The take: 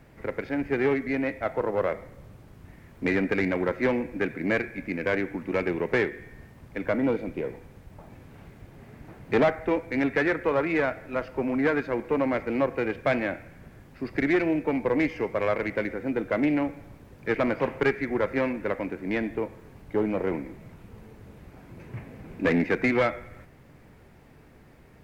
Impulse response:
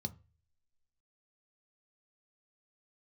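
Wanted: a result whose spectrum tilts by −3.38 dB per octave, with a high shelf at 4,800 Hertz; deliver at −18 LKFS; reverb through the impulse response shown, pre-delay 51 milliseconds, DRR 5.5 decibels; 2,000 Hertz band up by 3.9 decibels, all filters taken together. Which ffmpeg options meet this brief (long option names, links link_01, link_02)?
-filter_complex "[0:a]equalizer=frequency=2000:width_type=o:gain=5,highshelf=frequency=4800:gain=-3,asplit=2[link_01][link_02];[1:a]atrim=start_sample=2205,adelay=51[link_03];[link_02][link_03]afir=irnorm=-1:irlink=0,volume=-4dB[link_04];[link_01][link_04]amix=inputs=2:normalize=0,volume=6dB"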